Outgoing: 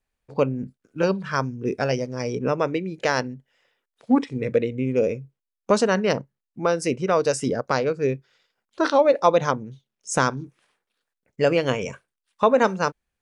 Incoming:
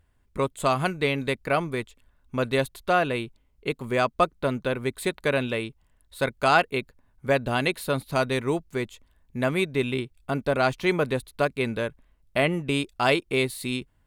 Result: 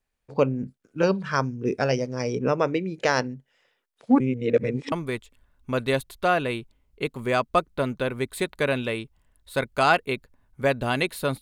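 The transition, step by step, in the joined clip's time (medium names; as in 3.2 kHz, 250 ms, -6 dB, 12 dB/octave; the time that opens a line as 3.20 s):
outgoing
4.20–4.92 s: reverse
4.92 s: go over to incoming from 1.57 s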